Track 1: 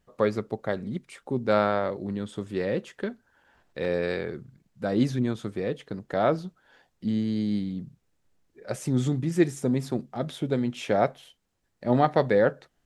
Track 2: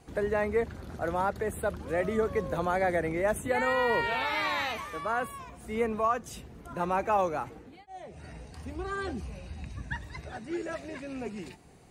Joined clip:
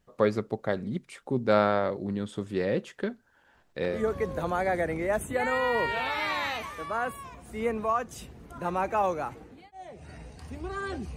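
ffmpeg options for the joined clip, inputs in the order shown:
-filter_complex "[0:a]apad=whole_dur=11.16,atrim=end=11.16,atrim=end=4.04,asetpts=PTS-STARTPTS[s0];[1:a]atrim=start=1.99:end=9.31,asetpts=PTS-STARTPTS[s1];[s0][s1]acrossfade=d=0.2:c1=tri:c2=tri"

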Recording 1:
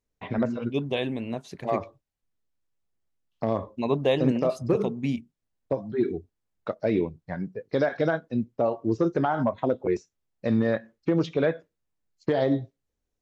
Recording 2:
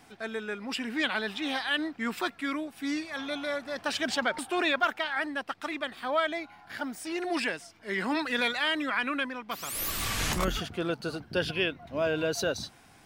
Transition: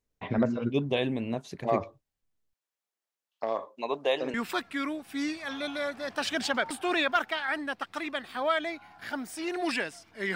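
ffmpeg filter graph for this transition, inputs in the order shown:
-filter_complex "[0:a]asettb=1/sr,asplit=3[s0][s1][s2];[s0]atrim=end=2.534[s3];[s1]atrim=start=2.53:end=4.34,asetpts=PTS-STARTPTS,afade=t=in:d=0.004:c=qsin,afade=t=out:st=1.806:d=0.004:c=qsin,highpass=590[s4];[s2]atrim=start=4.336[s5];[s3][s4]acrossfade=d=0.004:c1=hsin:c2=qsin[s6];[s6][s5]acrossfade=d=0.004:c1=qsin:c2=hsin,apad=whole_dur=10.35,atrim=end=10.35,atrim=end=4.342[s7];[1:a]atrim=start=2.018:end=8.03[s8];[s7][s8]acrossfade=d=0.004:c1=hsin:c2=hsin"

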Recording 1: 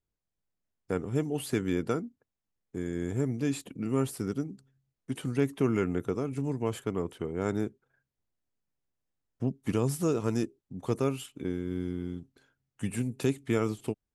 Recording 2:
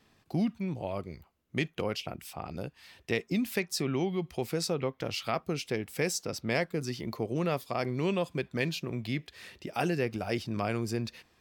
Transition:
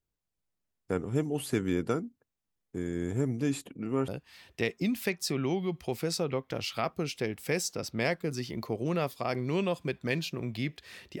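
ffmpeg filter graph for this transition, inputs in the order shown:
-filter_complex "[0:a]asettb=1/sr,asplit=3[s0][s1][s2];[s0]atrim=end=3.674[s3];[s1]atrim=start=3.67:end=4.08,asetpts=PTS-STARTPTS,afade=t=in:d=0.004:c=qsin,afade=t=out:st=0.406:d=0.004:c=qsin,bass=f=250:g=-5,treble=f=4000:g=-11[s4];[s2]atrim=start=4.076[s5];[s3][s4]acrossfade=d=0.004:c1=hsin:c2=qsin[s6];[s6][s5]acrossfade=d=0.004:c1=qsin:c2=hsin,apad=whole_dur=11.2,atrim=end=11.2,atrim=end=4.082[s7];[1:a]atrim=start=2.578:end=9.7[s8];[s7][s8]acrossfade=d=0.004:c1=hsin:c2=hsin"

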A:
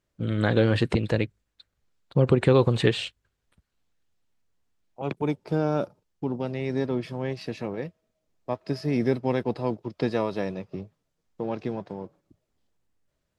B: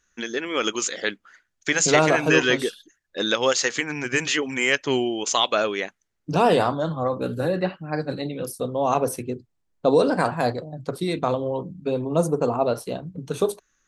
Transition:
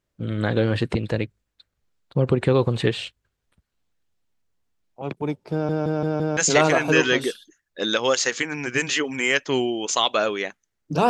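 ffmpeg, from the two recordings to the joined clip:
-filter_complex "[0:a]apad=whole_dur=11.09,atrim=end=11.09,asplit=5[s0][s1][s2][s3][s4];[s0]atrim=end=5.692[s5];[s1]atrim=start=5.518:end=5.692[s6];[s2]atrim=start=5.518:end=5.692[s7];[s3]atrim=start=5.518:end=5.692[s8];[s4]atrim=start=5.518:end=5.692[s9];[1:a]atrim=start=1.748:end=6.47[s10];[s5][s6]acrossfade=d=0.004:c1=hsin:c2=hsin[s11];[s11][s7]acrossfade=d=0.004:c1=hsin:c2=hsin[s12];[s12][s8]acrossfade=d=0.004:c1=hsin:c2=hsin[s13];[s13][s9]acrossfade=d=0.004:c1=hsin:c2=hsin[s14];[s14][s10]acrossfade=d=0.004:c1=hsin:c2=hsin"

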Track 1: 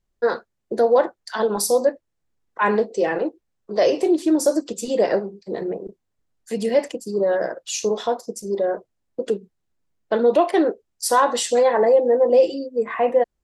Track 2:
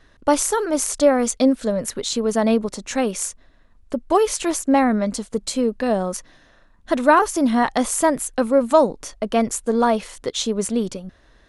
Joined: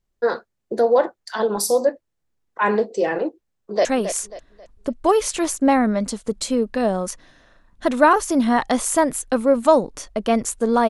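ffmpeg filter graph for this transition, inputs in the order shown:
-filter_complex "[0:a]apad=whole_dur=10.89,atrim=end=10.89,atrim=end=3.852[s0];[1:a]atrim=start=2.908:end=9.95[s1];[s0][s1]acrossfade=d=0.004:c1=hsin:c2=hsin,asplit=2[s2][s3];[s3]afade=t=in:st=3.52:d=0.01,afade=t=out:st=3.85:d=0.01,aecho=0:1:270|540|810|1080:0.334965|0.117238|0.0410333|0.0143616[s4];[s2][s4]amix=inputs=2:normalize=0"

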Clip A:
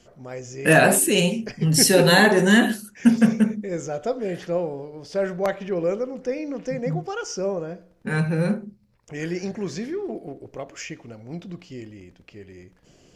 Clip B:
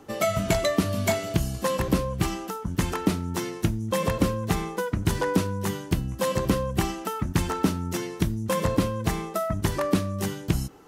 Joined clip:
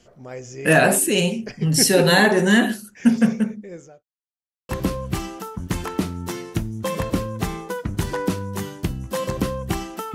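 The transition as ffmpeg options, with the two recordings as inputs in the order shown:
-filter_complex "[0:a]apad=whole_dur=10.14,atrim=end=10.14,asplit=2[s0][s1];[s0]atrim=end=4.03,asetpts=PTS-STARTPTS,afade=t=out:st=3.22:d=0.81[s2];[s1]atrim=start=4.03:end=4.69,asetpts=PTS-STARTPTS,volume=0[s3];[1:a]atrim=start=1.77:end=7.22,asetpts=PTS-STARTPTS,afade=t=in:d=0.004:c=hsin[s4];[s2][s3][s4]concat=n=3:v=0:a=1"

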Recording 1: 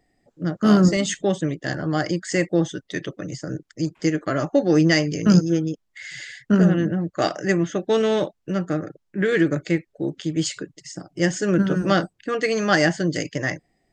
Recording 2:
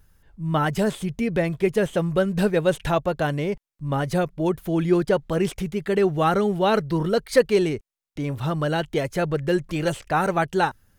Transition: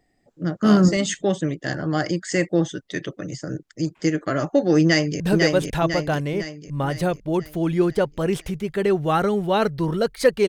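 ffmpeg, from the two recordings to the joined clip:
-filter_complex "[0:a]apad=whole_dur=10.48,atrim=end=10.48,atrim=end=5.202[s0];[1:a]atrim=start=2.318:end=7.6[s1];[s0][s1]acrossfade=d=0.004:c1=hsin:c2=hsin,asplit=2[s2][s3];[s3]afade=t=in:st=4.82:d=0.01,afade=t=out:st=5.2:d=0.01,aecho=0:1:500|1000|1500|2000|2500|3000|3500:0.749894|0.374947|0.187474|0.0937368|0.0468684|0.0234342|0.0117171[s4];[s2][s4]amix=inputs=2:normalize=0"

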